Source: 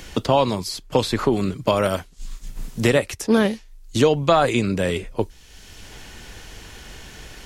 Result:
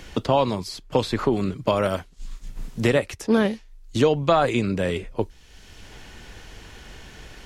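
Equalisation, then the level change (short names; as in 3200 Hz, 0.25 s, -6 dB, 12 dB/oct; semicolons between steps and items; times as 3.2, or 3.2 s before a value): high shelf 5700 Hz -8 dB; -2.0 dB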